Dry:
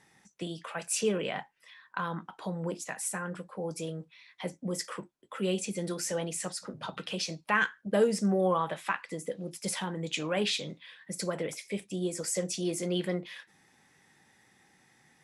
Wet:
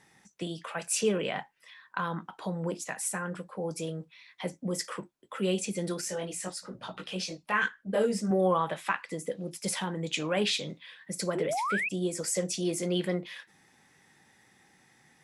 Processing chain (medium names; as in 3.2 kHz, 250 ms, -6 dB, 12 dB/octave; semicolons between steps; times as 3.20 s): 6.01–8.31 s: chorus voices 6, 1.1 Hz, delay 19 ms, depth 3 ms; 11.35–11.89 s: painted sound rise 330–2700 Hz -32 dBFS; trim +1.5 dB